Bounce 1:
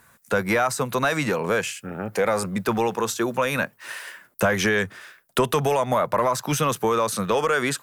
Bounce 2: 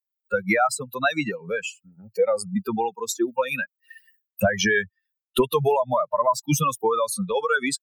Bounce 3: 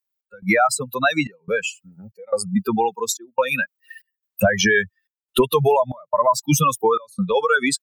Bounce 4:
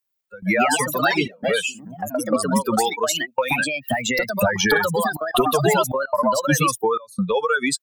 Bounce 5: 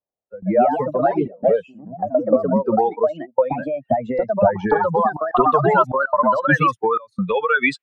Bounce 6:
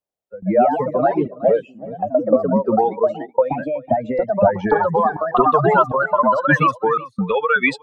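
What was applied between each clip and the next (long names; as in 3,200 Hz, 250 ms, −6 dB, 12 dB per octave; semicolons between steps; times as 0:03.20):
spectral dynamics exaggerated over time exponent 3; level +6.5 dB
in parallel at −1.5 dB: brickwall limiter −15.5 dBFS, peak gain reduction 6.5 dB; on the sum: gate pattern "x.xxxx.xx" 71 BPM −24 dB
downward compressor 2 to 1, threshold −25 dBFS, peak gain reduction 8 dB; delay with pitch and tempo change per echo 190 ms, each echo +3 semitones, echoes 2; level +3.5 dB
low-pass filter sweep 650 Hz → 2,500 Hz, 0:03.96–0:07.65
single-tap delay 372 ms −18.5 dB; level +1 dB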